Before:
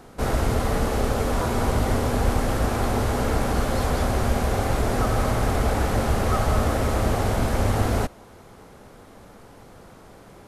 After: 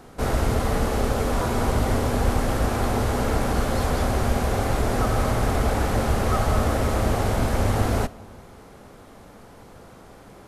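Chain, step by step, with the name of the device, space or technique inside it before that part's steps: compressed reverb return (on a send at -8 dB: reverb RT60 1.0 s, pre-delay 20 ms + compressor, threshold -30 dBFS, peak gain reduction 13.5 dB)

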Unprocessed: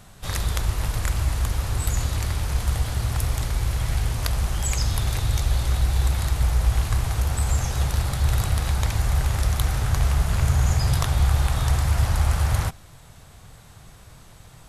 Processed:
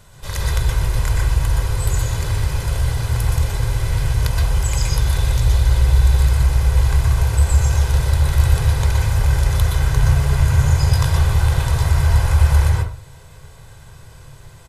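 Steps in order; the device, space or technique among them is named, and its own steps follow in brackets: microphone above a desk (comb 2 ms, depth 52%; reverb RT60 0.40 s, pre-delay 0.116 s, DRR -2 dB); gain -1 dB

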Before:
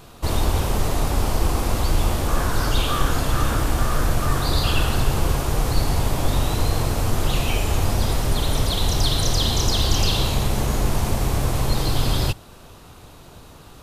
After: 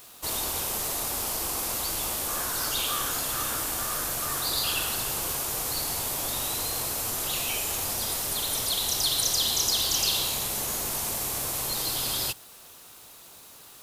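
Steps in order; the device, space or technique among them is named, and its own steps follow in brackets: turntable without a phono preamp (RIAA curve recording; white noise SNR 26 dB); gain -8 dB

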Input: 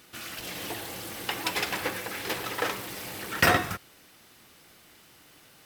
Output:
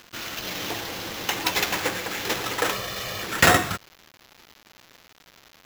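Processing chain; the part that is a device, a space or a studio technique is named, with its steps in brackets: bell 3700 Hz +3.5 dB 0.62 oct; early 8-bit sampler (sample-rate reducer 9200 Hz, jitter 0%; bit-crush 8-bit); 2.72–3.23 comb 1.7 ms, depth 69%; gain +4.5 dB

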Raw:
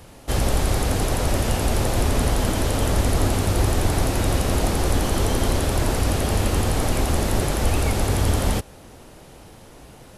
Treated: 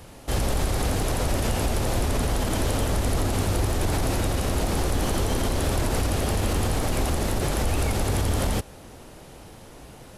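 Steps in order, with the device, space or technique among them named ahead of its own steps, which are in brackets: limiter into clipper (limiter -15 dBFS, peak gain reduction 7.5 dB; hard clip -16.5 dBFS, distortion -31 dB)

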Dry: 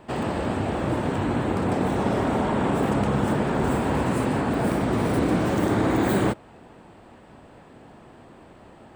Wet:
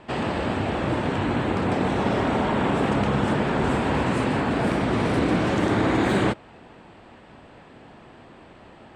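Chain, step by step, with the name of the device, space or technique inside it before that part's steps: LPF 6500 Hz 12 dB/oct; presence and air boost (bell 2700 Hz +5 dB 1.9 oct; high shelf 9700 Hz +4.5 dB)

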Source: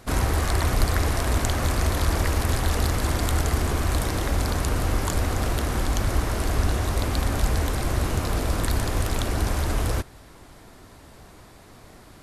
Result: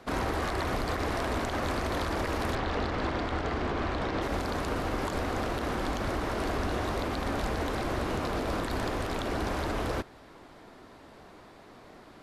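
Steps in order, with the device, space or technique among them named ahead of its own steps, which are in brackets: DJ mixer with the lows and highs turned down (three-band isolator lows -12 dB, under 190 Hz, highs -15 dB, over 4500 Hz; limiter -20.5 dBFS, peak gain reduction 8 dB); 2.55–4.22 LPF 4400 Hz 12 dB/oct; bell 2400 Hz -2.5 dB 1.8 oct

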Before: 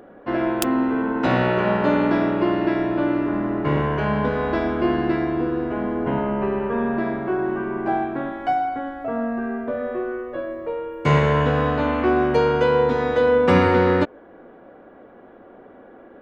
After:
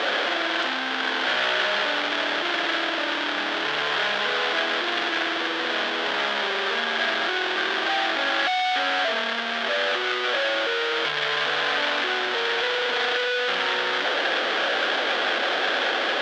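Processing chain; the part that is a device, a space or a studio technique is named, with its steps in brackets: home computer beeper (infinite clipping; speaker cabinet 630–4500 Hz, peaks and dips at 1000 Hz -5 dB, 1600 Hz +6 dB, 3300 Hz +8 dB)

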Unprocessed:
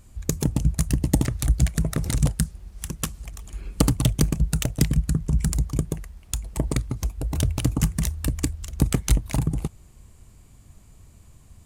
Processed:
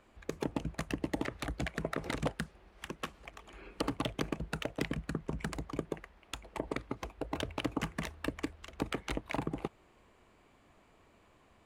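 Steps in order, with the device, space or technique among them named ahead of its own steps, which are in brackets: DJ mixer with the lows and highs turned down (three-band isolator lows -23 dB, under 290 Hz, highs -23 dB, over 3300 Hz; limiter -21 dBFS, peak gain reduction 10 dB); gain +1 dB

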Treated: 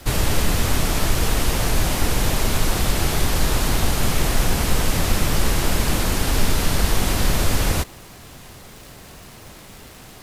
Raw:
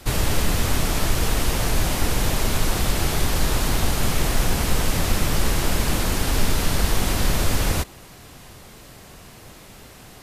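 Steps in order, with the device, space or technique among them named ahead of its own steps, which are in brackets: vinyl LP (crackle 130/s -35 dBFS; pink noise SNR 34 dB); gain +1.5 dB

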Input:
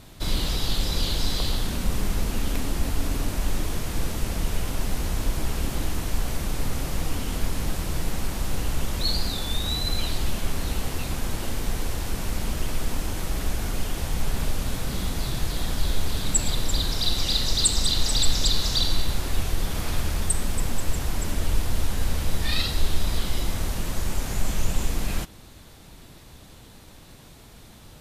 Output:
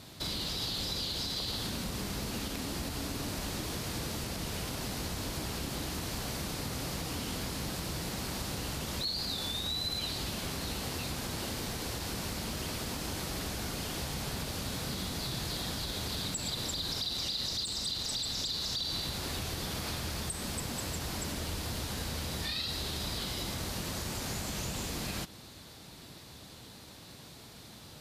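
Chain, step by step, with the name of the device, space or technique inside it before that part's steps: broadcast voice chain (HPF 89 Hz 12 dB/oct; de-esser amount 35%; compressor 3:1, threshold -32 dBFS, peak gain reduction 9.5 dB; bell 4500 Hz +6 dB 0.67 oct; limiter -23.5 dBFS, peak gain reduction 8 dB); gain -2 dB

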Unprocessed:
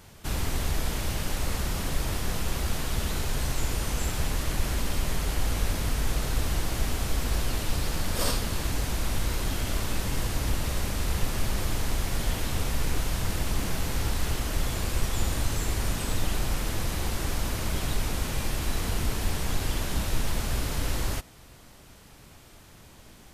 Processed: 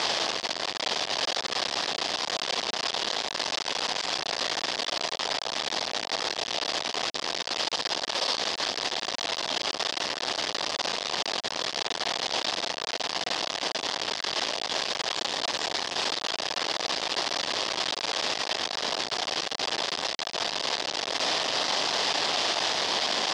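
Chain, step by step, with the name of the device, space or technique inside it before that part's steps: home computer beeper (infinite clipping; speaker cabinet 540–5400 Hz, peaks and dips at 690 Hz +3 dB, 1400 Hz -6 dB, 2300 Hz -4 dB, 3400 Hz +3 dB, 4900 Hz +5 dB); gain +4 dB

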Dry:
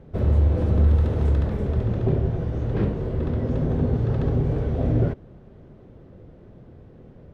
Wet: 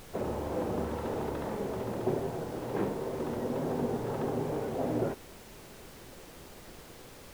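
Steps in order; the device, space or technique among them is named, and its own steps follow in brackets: horn gramophone (BPF 280–3100 Hz; bell 890 Hz +7.5 dB 0.49 oct; wow and flutter; pink noise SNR 16 dB); gain -3 dB

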